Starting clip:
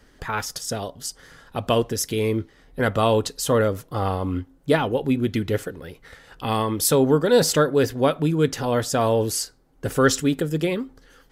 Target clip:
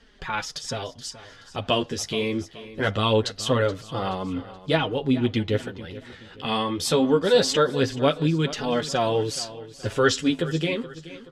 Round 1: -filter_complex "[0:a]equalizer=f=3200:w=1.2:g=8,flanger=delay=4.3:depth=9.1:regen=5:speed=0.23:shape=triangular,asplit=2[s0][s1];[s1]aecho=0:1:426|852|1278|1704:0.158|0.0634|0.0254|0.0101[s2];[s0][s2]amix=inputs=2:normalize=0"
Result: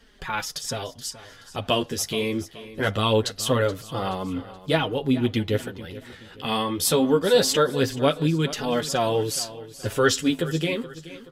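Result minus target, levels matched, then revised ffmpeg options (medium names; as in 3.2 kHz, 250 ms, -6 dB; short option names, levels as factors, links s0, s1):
8 kHz band +4.0 dB
-filter_complex "[0:a]lowpass=6600,equalizer=f=3200:w=1.2:g=8,flanger=delay=4.3:depth=9.1:regen=5:speed=0.23:shape=triangular,asplit=2[s0][s1];[s1]aecho=0:1:426|852|1278|1704:0.158|0.0634|0.0254|0.0101[s2];[s0][s2]amix=inputs=2:normalize=0"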